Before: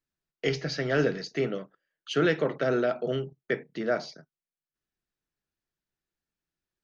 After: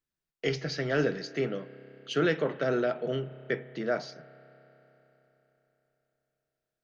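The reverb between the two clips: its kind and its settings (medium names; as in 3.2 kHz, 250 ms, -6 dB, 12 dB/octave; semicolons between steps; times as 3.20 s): spring tank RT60 3.9 s, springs 30 ms, chirp 75 ms, DRR 16.5 dB; trim -2 dB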